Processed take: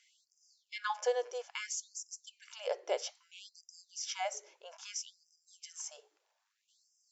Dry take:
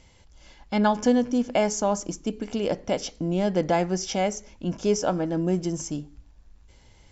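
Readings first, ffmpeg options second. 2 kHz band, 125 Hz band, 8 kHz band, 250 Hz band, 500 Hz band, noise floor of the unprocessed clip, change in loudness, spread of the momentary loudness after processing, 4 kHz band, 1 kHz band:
−8.5 dB, below −40 dB, can't be measured, below −40 dB, −14.0 dB, −55 dBFS, −13.5 dB, 18 LU, −7.5 dB, −13.5 dB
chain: -af "afftfilt=real='re*gte(b*sr/1024,340*pow(4900/340,0.5+0.5*sin(2*PI*0.61*pts/sr)))':imag='im*gte(b*sr/1024,340*pow(4900/340,0.5+0.5*sin(2*PI*0.61*pts/sr)))':win_size=1024:overlap=0.75,volume=-7dB"

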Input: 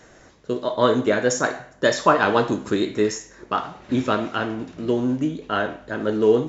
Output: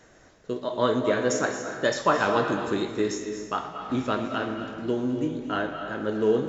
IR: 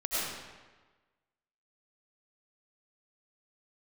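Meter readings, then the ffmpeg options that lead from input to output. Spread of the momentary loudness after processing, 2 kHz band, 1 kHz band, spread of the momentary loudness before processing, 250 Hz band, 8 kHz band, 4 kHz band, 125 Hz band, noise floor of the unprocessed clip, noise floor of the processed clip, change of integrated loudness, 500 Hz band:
9 LU, −4.5 dB, −4.5 dB, 9 LU, −4.5 dB, can't be measured, −4.5 dB, −4.5 dB, −51 dBFS, −55 dBFS, −4.5 dB, −4.5 dB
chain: -filter_complex "[0:a]asplit=2[link_01][link_02];[1:a]atrim=start_sample=2205,adelay=120[link_03];[link_02][link_03]afir=irnorm=-1:irlink=0,volume=-13.5dB[link_04];[link_01][link_04]amix=inputs=2:normalize=0,volume=-5.5dB"

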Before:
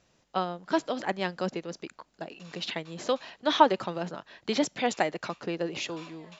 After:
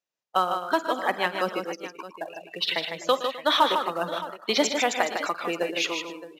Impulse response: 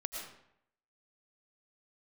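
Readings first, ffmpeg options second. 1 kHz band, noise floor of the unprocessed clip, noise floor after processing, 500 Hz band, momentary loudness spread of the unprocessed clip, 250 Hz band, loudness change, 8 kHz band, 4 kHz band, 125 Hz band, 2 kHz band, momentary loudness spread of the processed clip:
+4.0 dB, −68 dBFS, −69 dBFS, +3.0 dB, 17 LU, −1.0 dB, +4.0 dB, can't be measured, +7.5 dB, −5.5 dB, +7.0 dB, 13 LU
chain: -af "highpass=frequency=750:poles=1,afftdn=noise_reduction=25:noise_floor=-40,agate=range=-6dB:threshold=-58dB:ratio=16:detection=peak,adynamicequalizer=threshold=0.00355:dfrequency=1200:dqfactor=3.5:tfrequency=1200:tqfactor=3.5:attack=5:release=100:ratio=0.375:range=2.5:mode=boostabove:tftype=bell,acontrast=84,alimiter=limit=-12dB:level=0:latency=1:release=388,acrusher=bits=6:mode=log:mix=0:aa=0.000001,aecho=1:1:49|117|153|257|618:0.126|0.188|0.473|0.119|0.178,aresample=32000,aresample=44100,volume=2dB"

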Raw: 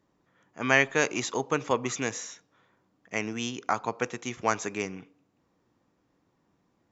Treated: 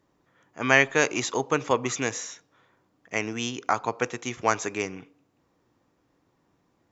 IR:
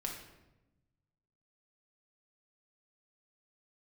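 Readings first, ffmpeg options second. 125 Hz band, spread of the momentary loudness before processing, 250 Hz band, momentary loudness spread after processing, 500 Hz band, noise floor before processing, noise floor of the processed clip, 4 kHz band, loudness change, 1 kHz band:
+2.5 dB, 12 LU, +2.0 dB, 12 LU, +3.0 dB, −73 dBFS, −70 dBFS, +3.0 dB, +3.0 dB, +3.0 dB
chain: -af "equalizer=frequency=200:width_type=o:width=0.38:gain=-5,volume=3dB"

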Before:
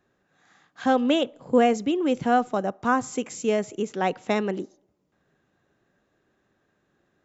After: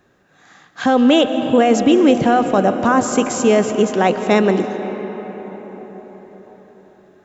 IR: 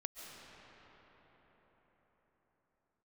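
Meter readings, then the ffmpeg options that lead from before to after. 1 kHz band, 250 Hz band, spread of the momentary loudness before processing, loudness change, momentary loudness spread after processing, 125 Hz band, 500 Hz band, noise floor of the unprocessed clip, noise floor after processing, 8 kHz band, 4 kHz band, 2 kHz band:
+7.5 dB, +10.5 dB, 9 LU, +9.5 dB, 18 LU, +12.0 dB, +9.5 dB, −72 dBFS, −56 dBFS, can't be measured, +10.0 dB, +8.0 dB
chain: -filter_complex "[0:a]alimiter=limit=-16.5dB:level=0:latency=1:release=22,asplit=2[link_01][link_02];[1:a]atrim=start_sample=2205[link_03];[link_02][link_03]afir=irnorm=-1:irlink=0,volume=1.5dB[link_04];[link_01][link_04]amix=inputs=2:normalize=0,volume=7.5dB"

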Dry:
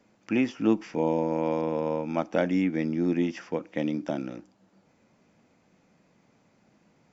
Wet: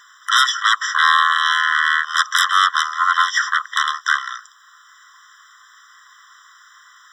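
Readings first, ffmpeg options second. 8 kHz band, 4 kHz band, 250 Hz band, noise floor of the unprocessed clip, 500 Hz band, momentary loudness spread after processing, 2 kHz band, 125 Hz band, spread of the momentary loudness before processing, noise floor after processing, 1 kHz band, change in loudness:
can't be measured, +29.0 dB, below −40 dB, −66 dBFS, below −40 dB, 6 LU, +24.5 dB, below −40 dB, 8 LU, −49 dBFS, +19.5 dB, +12.0 dB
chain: -af "aeval=exprs='0.299*sin(PI/2*7.94*val(0)/0.299)':channel_layout=same,afftfilt=real='re*eq(mod(floor(b*sr/1024/1000),2),1)':imag='im*eq(mod(floor(b*sr/1024/1000),2),1)':win_size=1024:overlap=0.75,volume=5.5dB"

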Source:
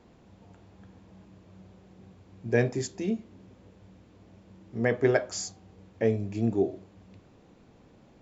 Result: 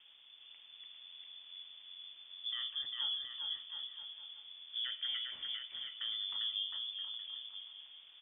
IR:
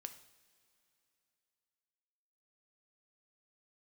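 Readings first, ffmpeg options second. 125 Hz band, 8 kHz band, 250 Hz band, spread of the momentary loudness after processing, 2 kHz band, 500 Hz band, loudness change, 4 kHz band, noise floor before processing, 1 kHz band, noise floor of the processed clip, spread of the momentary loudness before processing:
below −40 dB, can't be measured, below −40 dB, 15 LU, −15.0 dB, below −40 dB, −11.0 dB, +13.5 dB, −58 dBFS, −17.0 dB, −59 dBFS, 13 LU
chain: -af "lowpass=frequency=3100:width_type=q:width=0.5098,lowpass=frequency=3100:width_type=q:width=0.6013,lowpass=frequency=3100:width_type=q:width=0.9,lowpass=frequency=3100:width_type=q:width=2.563,afreqshift=-3600,alimiter=level_in=2.5dB:limit=-24dB:level=0:latency=1:release=234,volume=-2.5dB,aecho=1:1:400|720|976|1181|1345:0.631|0.398|0.251|0.158|0.1,volume=-4dB"

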